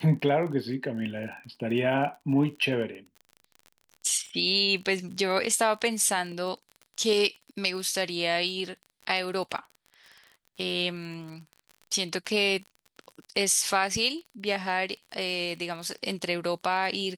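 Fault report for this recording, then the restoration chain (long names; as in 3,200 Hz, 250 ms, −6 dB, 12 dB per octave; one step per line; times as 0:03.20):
surface crackle 34 per second −37 dBFS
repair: click removal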